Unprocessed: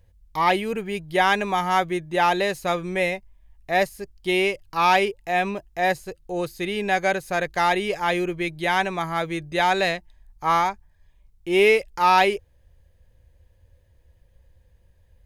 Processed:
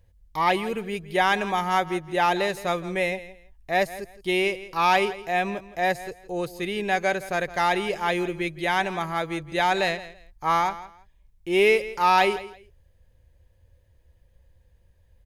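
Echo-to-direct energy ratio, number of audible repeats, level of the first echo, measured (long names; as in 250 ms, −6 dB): −16.0 dB, 2, −16.0 dB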